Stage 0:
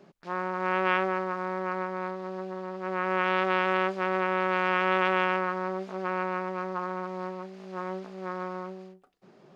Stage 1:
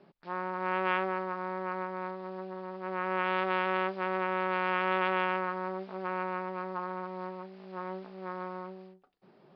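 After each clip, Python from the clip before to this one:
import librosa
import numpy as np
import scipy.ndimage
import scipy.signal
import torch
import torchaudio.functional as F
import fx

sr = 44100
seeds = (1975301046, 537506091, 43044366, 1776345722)

y = scipy.signal.sosfilt(scipy.signal.butter(12, 5100.0, 'lowpass', fs=sr, output='sos'), x)
y = fx.peak_eq(y, sr, hz=890.0, db=3.0, octaves=0.29)
y = y * librosa.db_to_amplitude(-4.5)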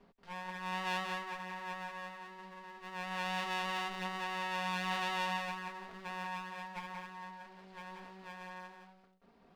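y = fx.lower_of_two(x, sr, delay_ms=4.3)
y = y + 10.0 ** (-5.0 / 20.0) * np.pad(y, (int(180 * sr / 1000.0), 0))[:len(y)]
y = y * librosa.db_to_amplitude(-3.5)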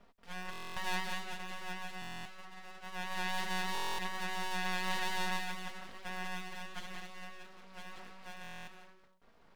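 y = np.abs(x)
y = fx.buffer_glitch(y, sr, at_s=(0.51, 2.0, 3.73, 8.42), block=1024, repeats=10)
y = y * librosa.db_to_amplitude(2.5)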